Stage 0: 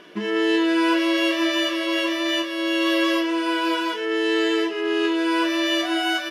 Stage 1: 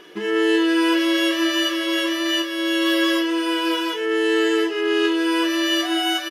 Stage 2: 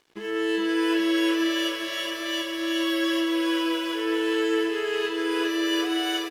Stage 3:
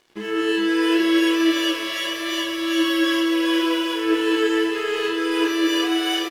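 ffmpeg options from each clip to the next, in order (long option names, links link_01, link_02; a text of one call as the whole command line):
ffmpeg -i in.wav -af "highshelf=frequency=10000:gain=10,aecho=1:1:2.4:0.48" out.wav
ffmpeg -i in.wav -af "aeval=exprs='sgn(val(0))*max(abs(val(0))-0.00841,0)':channel_layout=same,aecho=1:1:415|830|1245|1660|2075|2490|2905:0.596|0.304|0.155|0.079|0.0403|0.0206|0.0105,volume=-7dB" out.wav
ffmpeg -i in.wav -filter_complex "[0:a]flanger=delay=8.2:depth=6.6:regen=73:speed=0.76:shape=sinusoidal,asplit=2[link_01][link_02];[link_02]adelay=28,volume=-5.5dB[link_03];[link_01][link_03]amix=inputs=2:normalize=0,volume=8dB" out.wav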